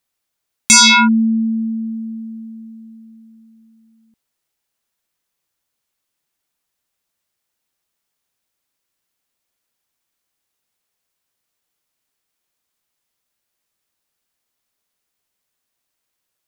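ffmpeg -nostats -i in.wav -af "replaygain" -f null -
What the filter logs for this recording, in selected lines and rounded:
track_gain = +4.1 dB
track_peak = 0.482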